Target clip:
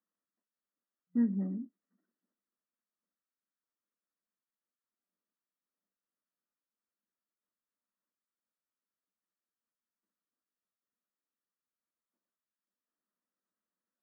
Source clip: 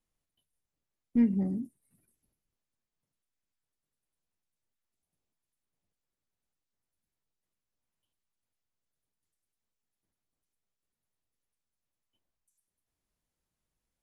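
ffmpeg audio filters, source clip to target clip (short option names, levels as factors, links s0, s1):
-af "equalizer=f=400:t=o:w=0.33:g=-4,equalizer=f=800:t=o:w=0.33:g=-7,equalizer=f=1250:t=o:w=0.33:g=6,afftfilt=real='re*between(b*sr/4096,180,2000)':imag='im*between(b*sr/4096,180,2000)':win_size=4096:overlap=0.75,volume=0.631"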